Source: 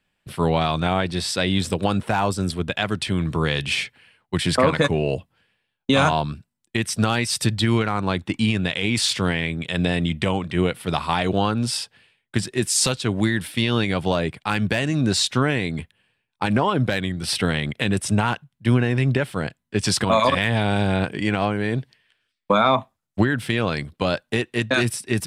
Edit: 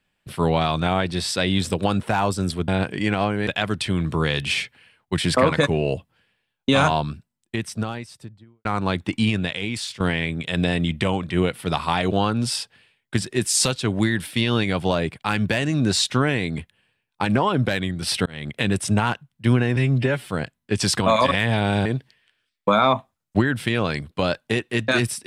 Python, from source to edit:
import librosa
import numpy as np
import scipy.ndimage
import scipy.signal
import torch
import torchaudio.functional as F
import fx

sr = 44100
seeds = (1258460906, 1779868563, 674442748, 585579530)

y = fx.studio_fade_out(x, sr, start_s=6.24, length_s=1.62)
y = fx.edit(y, sr, fx.fade_out_to(start_s=8.51, length_s=0.7, floor_db=-15.5),
    fx.fade_in_span(start_s=17.47, length_s=0.34),
    fx.stretch_span(start_s=18.97, length_s=0.35, factor=1.5),
    fx.move(start_s=20.89, length_s=0.79, to_s=2.68), tone=tone)